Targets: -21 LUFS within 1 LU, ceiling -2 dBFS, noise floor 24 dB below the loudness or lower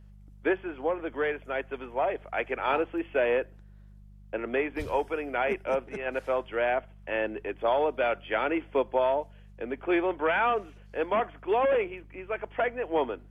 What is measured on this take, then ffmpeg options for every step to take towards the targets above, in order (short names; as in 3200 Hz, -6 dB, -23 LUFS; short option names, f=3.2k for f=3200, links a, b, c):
hum 50 Hz; harmonics up to 200 Hz; hum level -48 dBFS; loudness -29.5 LUFS; peak -14.0 dBFS; loudness target -21.0 LUFS
-> -af "bandreject=f=50:t=h:w=4,bandreject=f=100:t=h:w=4,bandreject=f=150:t=h:w=4,bandreject=f=200:t=h:w=4"
-af "volume=8.5dB"